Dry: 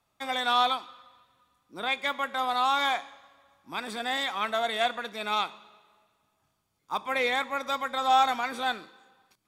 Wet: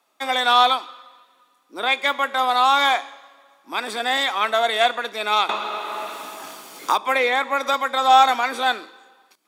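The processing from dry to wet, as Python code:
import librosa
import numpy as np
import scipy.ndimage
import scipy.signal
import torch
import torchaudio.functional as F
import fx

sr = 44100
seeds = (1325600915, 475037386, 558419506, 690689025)

y = scipy.signal.sosfilt(scipy.signal.butter(4, 270.0, 'highpass', fs=sr, output='sos'), x)
y = fx.band_squash(y, sr, depth_pct=100, at=(5.49, 7.74))
y = F.gain(torch.from_numpy(y), 8.5).numpy()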